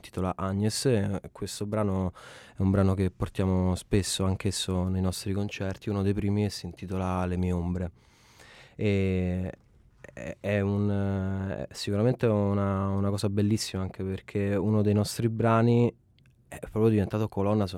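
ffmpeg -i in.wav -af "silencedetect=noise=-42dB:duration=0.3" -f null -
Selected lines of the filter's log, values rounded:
silence_start: 7.89
silence_end: 8.40 | silence_duration: 0.50
silence_start: 9.54
silence_end: 10.04 | silence_duration: 0.50
silence_start: 15.91
silence_end: 16.52 | silence_duration: 0.61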